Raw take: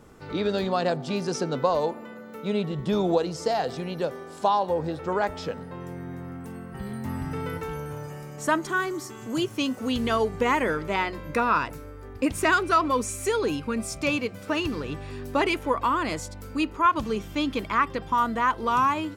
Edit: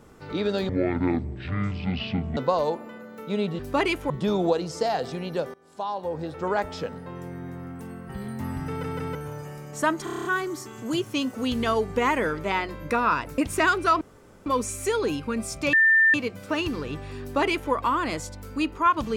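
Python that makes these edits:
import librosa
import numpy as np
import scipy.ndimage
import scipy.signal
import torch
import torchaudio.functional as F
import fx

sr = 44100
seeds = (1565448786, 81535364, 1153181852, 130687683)

y = fx.edit(x, sr, fx.speed_span(start_s=0.69, length_s=0.84, speed=0.5),
    fx.fade_in_from(start_s=4.19, length_s=0.97, floor_db=-22.0),
    fx.stutter_over(start_s=7.32, slice_s=0.16, count=3),
    fx.stutter(start_s=8.69, slice_s=0.03, count=8),
    fx.cut(start_s=11.82, length_s=0.41),
    fx.insert_room_tone(at_s=12.86, length_s=0.45),
    fx.insert_tone(at_s=14.13, length_s=0.41, hz=1790.0, db=-14.5),
    fx.duplicate(start_s=15.2, length_s=0.51, to_s=2.75), tone=tone)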